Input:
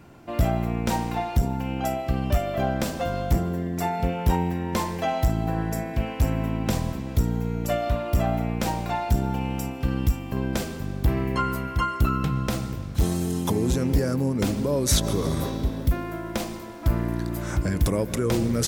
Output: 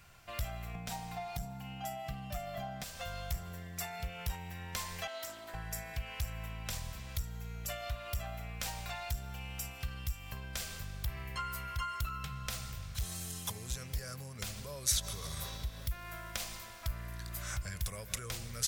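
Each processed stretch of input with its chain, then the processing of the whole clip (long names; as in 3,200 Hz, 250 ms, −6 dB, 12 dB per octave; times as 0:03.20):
0:00.74–0:02.84: comb filter 6.6 ms, depth 62% + hollow resonant body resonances 210/700 Hz, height 14 dB, ringing for 35 ms
0:05.07–0:05.54: four-pole ladder high-pass 210 Hz, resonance 25% + comb filter 3.2 ms, depth 84% + highs frequency-modulated by the lows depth 0.15 ms
whole clip: downward compressor 4 to 1, threshold −27 dBFS; guitar amp tone stack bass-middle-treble 10-0-10; notch filter 900 Hz, Q 9; level +1.5 dB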